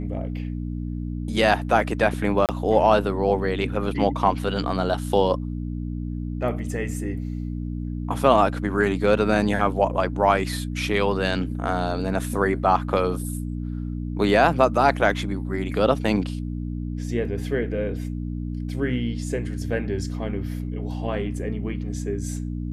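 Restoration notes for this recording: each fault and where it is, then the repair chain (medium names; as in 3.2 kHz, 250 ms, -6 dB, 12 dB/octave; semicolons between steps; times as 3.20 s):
hum 60 Hz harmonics 5 -29 dBFS
2.46–2.49 s: dropout 28 ms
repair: de-hum 60 Hz, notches 5; interpolate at 2.46 s, 28 ms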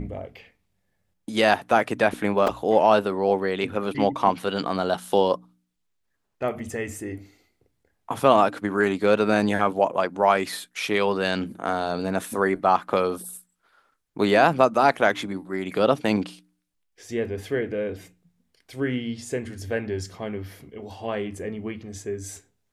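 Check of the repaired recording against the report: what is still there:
nothing left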